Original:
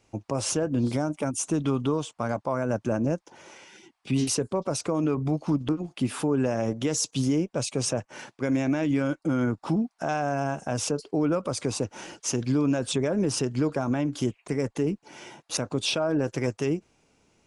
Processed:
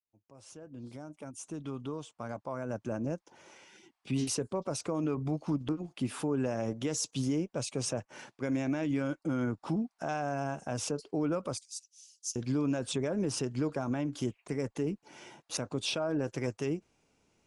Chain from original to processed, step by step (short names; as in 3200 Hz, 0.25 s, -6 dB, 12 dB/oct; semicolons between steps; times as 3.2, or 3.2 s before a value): opening faded in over 3.86 s; 11.57–12.36 inverse Chebyshev high-pass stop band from 1100 Hz, stop band 70 dB; gain -6.5 dB